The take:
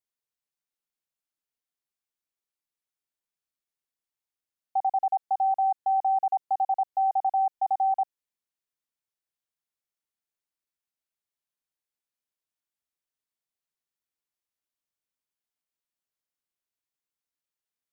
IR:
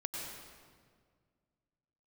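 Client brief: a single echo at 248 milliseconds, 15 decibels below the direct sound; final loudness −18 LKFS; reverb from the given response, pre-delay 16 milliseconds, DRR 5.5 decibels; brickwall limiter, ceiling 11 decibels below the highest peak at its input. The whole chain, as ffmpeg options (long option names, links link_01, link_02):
-filter_complex "[0:a]alimiter=level_in=7dB:limit=-24dB:level=0:latency=1,volume=-7dB,aecho=1:1:248:0.178,asplit=2[link_01][link_02];[1:a]atrim=start_sample=2205,adelay=16[link_03];[link_02][link_03]afir=irnorm=-1:irlink=0,volume=-7dB[link_04];[link_01][link_04]amix=inputs=2:normalize=0,volume=20.5dB"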